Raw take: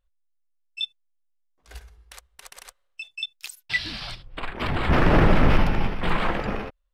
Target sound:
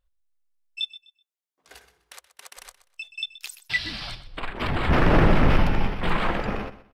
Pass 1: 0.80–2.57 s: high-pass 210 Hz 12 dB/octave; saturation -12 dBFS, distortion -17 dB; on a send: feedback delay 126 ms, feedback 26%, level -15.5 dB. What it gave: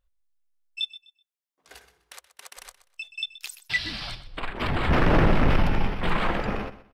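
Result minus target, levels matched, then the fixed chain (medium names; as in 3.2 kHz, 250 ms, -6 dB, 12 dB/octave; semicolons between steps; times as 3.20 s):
saturation: distortion +12 dB
0.80–2.57 s: high-pass 210 Hz 12 dB/octave; saturation -4.5 dBFS, distortion -29 dB; on a send: feedback delay 126 ms, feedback 26%, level -15.5 dB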